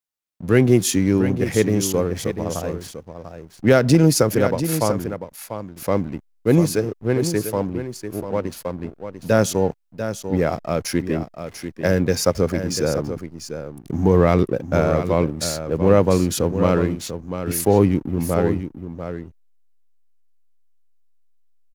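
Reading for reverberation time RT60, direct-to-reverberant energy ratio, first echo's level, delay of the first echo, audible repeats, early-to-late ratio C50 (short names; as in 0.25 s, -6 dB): none, none, -9.5 dB, 0.693 s, 1, none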